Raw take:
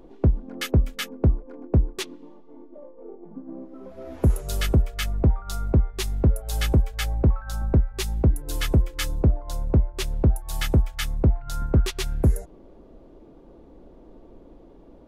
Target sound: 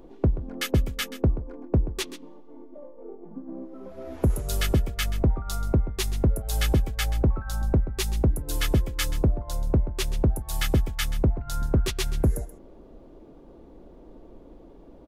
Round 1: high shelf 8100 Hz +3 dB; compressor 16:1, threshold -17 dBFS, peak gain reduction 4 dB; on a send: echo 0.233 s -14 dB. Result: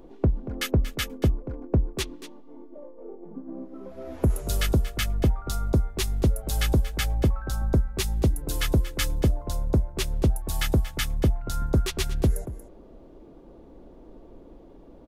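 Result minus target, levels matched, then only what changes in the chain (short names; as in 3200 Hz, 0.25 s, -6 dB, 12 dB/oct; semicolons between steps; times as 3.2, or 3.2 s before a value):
echo 0.102 s late
change: echo 0.131 s -14 dB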